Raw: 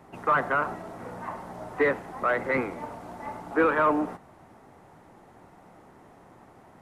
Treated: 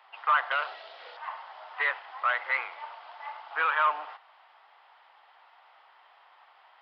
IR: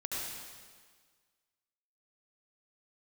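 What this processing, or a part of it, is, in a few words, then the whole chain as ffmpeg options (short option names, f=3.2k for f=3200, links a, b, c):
musical greeting card: -filter_complex "[0:a]asettb=1/sr,asplit=3[a][b][c];[a]atrim=end=0.514[d];[b]atrim=start=0.51:end=1.17,asetpts=PTS-STARTPTS,afade=t=in:d=0.004:c=qsin,afade=t=out:st=0.656:d=0.004:c=qsin,equalizer=f=500:t=o:w=1:g=10,equalizer=f=1k:t=o:w=1:g=-9,equalizer=f=4k:t=o:w=1:g=9,equalizer=f=8k:t=o:w=1:g=5[e];[c]atrim=start=1.166[f];[d][e]acrossfade=d=0.004:c1=hsin:c2=qsin[g];[g][f]acrossfade=d=0.004:c1=qsin:c2=hsin,aresample=11025,aresample=44100,highpass=f=850:w=0.5412,highpass=f=850:w=1.3066,equalizer=f=3.1k:t=o:w=0.53:g=10"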